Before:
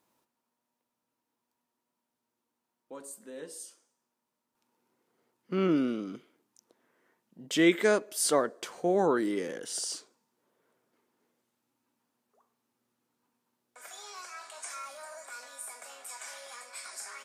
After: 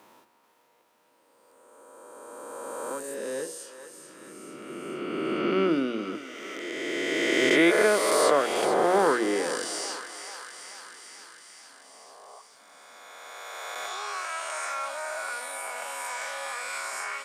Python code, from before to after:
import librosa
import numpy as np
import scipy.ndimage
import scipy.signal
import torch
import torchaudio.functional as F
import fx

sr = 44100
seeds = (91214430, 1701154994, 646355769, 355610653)

p1 = fx.spec_swells(x, sr, rise_s=2.34)
p2 = fx.bass_treble(p1, sr, bass_db=-8, treble_db=-8)
p3 = fx.hum_notches(p2, sr, base_hz=60, count=6)
p4 = p3 + fx.echo_thinned(p3, sr, ms=438, feedback_pct=63, hz=1000.0, wet_db=-12, dry=0)
p5 = fx.band_squash(p4, sr, depth_pct=40)
y = p5 * librosa.db_to_amplitude(5.5)